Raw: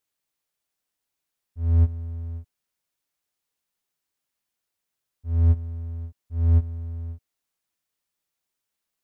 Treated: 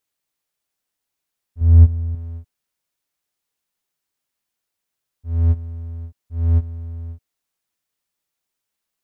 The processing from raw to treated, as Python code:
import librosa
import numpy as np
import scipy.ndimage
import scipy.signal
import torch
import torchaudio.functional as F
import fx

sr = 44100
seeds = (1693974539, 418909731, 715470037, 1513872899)

y = fx.low_shelf(x, sr, hz=250.0, db=8.0, at=(1.61, 2.15))
y = y * librosa.db_to_amplitude(2.0)